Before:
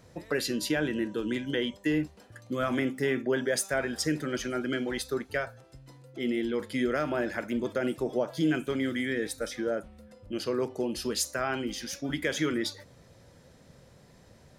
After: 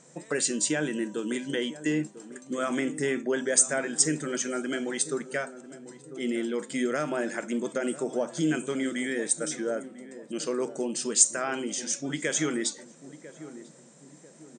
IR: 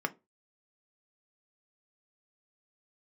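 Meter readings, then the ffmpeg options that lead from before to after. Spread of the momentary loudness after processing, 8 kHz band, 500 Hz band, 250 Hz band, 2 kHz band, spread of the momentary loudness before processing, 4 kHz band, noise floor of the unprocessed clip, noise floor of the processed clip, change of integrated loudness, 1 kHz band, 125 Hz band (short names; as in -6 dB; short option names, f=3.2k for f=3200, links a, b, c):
20 LU, +12.0 dB, 0.0 dB, 0.0 dB, 0.0 dB, 6 LU, 0.0 dB, -57 dBFS, -53 dBFS, +2.5 dB, 0.0 dB, -2.0 dB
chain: -filter_complex "[0:a]asplit=2[a][b];[b]adelay=996,lowpass=f=820:p=1,volume=-13.5dB,asplit=2[c][d];[d]adelay=996,lowpass=f=820:p=1,volume=0.47,asplit=2[e][f];[f]adelay=996,lowpass=f=820:p=1,volume=0.47,asplit=2[g][h];[h]adelay=996,lowpass=f=820:p=1,volume=0.47,asplit=2[i][j];[j]adelay=996,lowpass=f=820:p=1,volume=0.47[k];[a][c][e][g][i][k]amix=inputs=6:normalize=0,aexciter=amount=7.4:drive=6.5:freq=6.7k,afftfilt=real='re*between(b*sr/4096,130,8900)':imag='im*between(b*sr/4096,130,8900)':win_size=4096:overlap=0.75"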